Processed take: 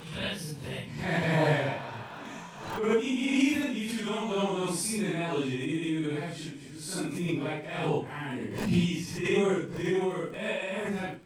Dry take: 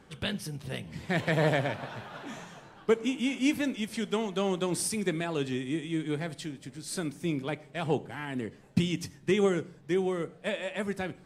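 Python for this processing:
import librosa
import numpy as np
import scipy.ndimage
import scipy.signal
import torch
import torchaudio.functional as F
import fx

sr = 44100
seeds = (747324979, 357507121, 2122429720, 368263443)

y = fx.phase_scramble(x, sr, seeds[0], window_ms=200)
y = fx.dmg_crackle(y, sr, seeds[1], per_s=57.0, level_db=-48.0)
y = fx.small_body(y, sr, hz=(980.0, 2500.0), ring_ms=30, db=7)
y = fx.pre_swell(y, sr, db_per_s=60.0)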